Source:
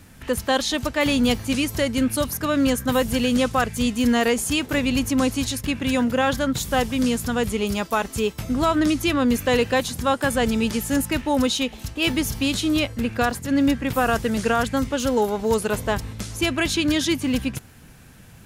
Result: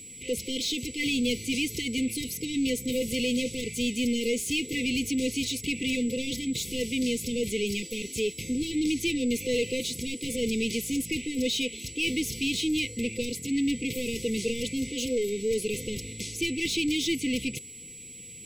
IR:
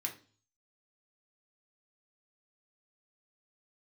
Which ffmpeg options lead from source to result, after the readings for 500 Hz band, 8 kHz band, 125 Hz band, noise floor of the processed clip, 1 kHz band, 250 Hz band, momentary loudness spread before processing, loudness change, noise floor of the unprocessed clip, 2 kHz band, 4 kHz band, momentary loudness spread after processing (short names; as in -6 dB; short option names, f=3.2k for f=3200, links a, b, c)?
-7.5 dB, -2.5 dB, -11.0 dB, -45 dBFS, under -40 dB, -7.0 dB, 5 LU, -6.5 dB, -46 dBFS, -6.5 dB, -3.5 dB, 5 LU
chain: -filter_complex "[0:a]asplit=2[a][b];[b]highpass=f=720:p=1,volume=21dB,asoftclip=type=tanh:threshold=-10dB[c];[a][c]amix=inputs=2:normalize=0,lowpass=f=3.7k:p=1,volume=-6dB,aeval=exprs='val(0)+0.02*sin(2*PI*7800*n/s)':c=same,afftfilt=real='re*(1-between(b*sr/4096,520,2000))':imag='im*(1-between(b*sr/4096,520,2000))':win_size=4096:overlap=0.75,volume=-9dB"